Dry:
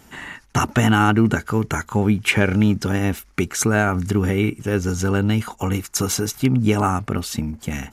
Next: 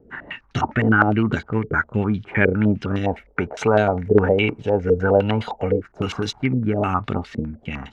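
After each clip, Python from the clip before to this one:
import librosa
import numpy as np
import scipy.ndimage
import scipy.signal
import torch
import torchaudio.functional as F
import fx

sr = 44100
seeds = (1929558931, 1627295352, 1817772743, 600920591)

y = fx.spec_box(x, sr, start_s=3.04, length_s=2.75, low_hz=410.0, high_hz=1000.0, gain_db=10)
y = fx.rotary_switch(y, sr, hz=5.5, then_hz=1.1, switch_at_s=1.53)
y = fx.filter_held_lowpass(y, sr, hz=9.8, low_hz=470.0, high_hz=3700.0)
y = F.gain(torch.from_numpy(y), -1.5).numpy()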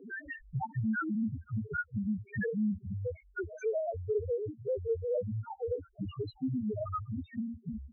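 y = fx.spec_topn(x, sr, count=1)
y = fx.band_squash(y, sr, depth_pct=70)
y = F.gain(torch.from_numpy(y), -5.5).numpy()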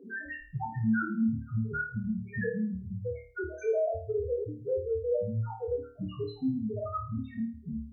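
y = fx.room_flutter(x, sr, wall_m=4.6, rt60_s=0.42)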